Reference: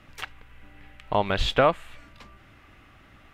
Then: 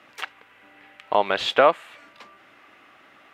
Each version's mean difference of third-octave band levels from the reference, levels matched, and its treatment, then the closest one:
3.5 dB: high-pass filter 380 Hz 12 dB per octave
high-shelf EQ 4,600 Hz −5.5 dB
level +4.5 dB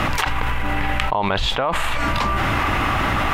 17.5 dB: parametric band 940 Hz +9 dB 0.79 octaves
envelope flattener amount 100%
level −7.5 dB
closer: first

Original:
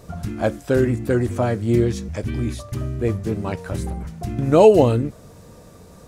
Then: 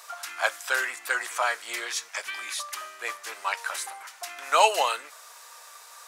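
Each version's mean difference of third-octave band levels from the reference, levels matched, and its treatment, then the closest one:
18.0 dB: high-pass filter 1,000 Hz 24 dB per octave
level +7.5 dB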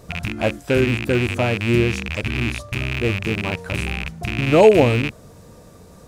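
4.5 dB: loose part that buzzes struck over −27 dBFS, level −13 dBFS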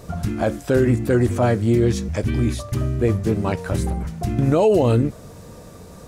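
3.0 dB: brickwall limiter −12.5 dBFS, peak gain reduction 10.5 dB
level +4 dB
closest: third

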